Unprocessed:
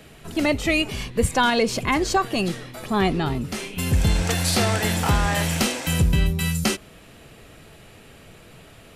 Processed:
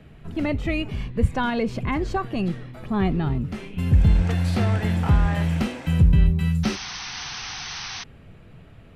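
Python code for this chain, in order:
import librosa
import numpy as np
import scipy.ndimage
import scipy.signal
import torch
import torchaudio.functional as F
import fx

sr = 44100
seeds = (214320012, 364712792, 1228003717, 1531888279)

y = fx.bass_treble(x, sr, bass_db=10, treble_db=-15)
y = fx.spec_paint(y, sr, seeds[0], shape='noise', start_s=6.63, length_s=1.41, low_hz=700.0, high_hz=6300.0, level_db=-28.0)
y = y * 10.0 ** (-6.0 / 20.0)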